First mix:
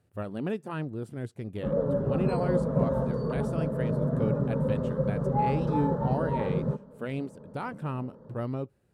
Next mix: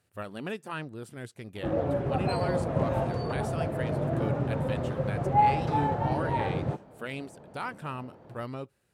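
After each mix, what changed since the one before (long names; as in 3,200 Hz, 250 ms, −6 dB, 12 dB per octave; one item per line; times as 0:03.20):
background: remove phaser with its sweep stopped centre 490 Hz, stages 8
master: add tilt shelving filter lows −7 dB, about 890 Hz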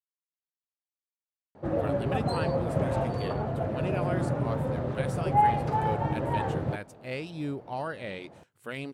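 speech: entry +1.65 s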